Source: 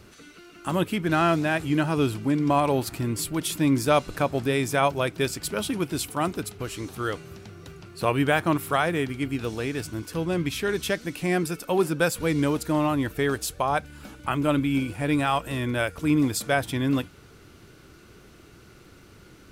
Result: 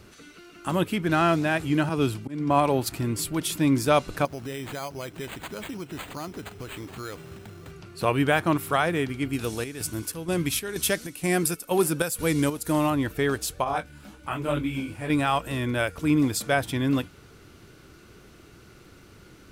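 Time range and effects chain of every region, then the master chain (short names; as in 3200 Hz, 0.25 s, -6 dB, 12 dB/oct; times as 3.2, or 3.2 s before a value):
1.89–2.92 auto swell 0.114 s + three-band expander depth 70%
4.25–7.71 careless resampling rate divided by 8×, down none, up hold + compressor 3:1, threshold -34 dBFS
9.33–12.9 bell 11000 Hz +12.5 dB 1.3 oct + chopper 2.1 Hz, depth 60%, duty 65%
13.64–15.1 doubler 19 ms -10 dB + detuned doubles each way 37 cents
whole clip: dry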